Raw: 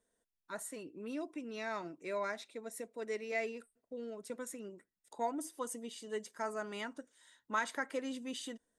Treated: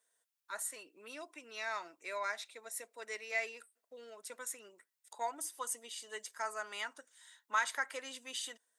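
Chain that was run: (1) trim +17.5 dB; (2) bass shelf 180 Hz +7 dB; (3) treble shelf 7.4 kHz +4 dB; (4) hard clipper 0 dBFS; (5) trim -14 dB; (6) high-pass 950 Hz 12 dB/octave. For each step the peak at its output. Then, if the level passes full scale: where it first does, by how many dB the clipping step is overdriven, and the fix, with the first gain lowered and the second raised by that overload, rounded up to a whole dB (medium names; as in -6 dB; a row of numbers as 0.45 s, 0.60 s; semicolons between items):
-4.5 dBFS, -4.5 dBFS, -4.5 dBFS, -4.5 dBFS, -18.5 dBFS, -20.0 dBFS; nothing clips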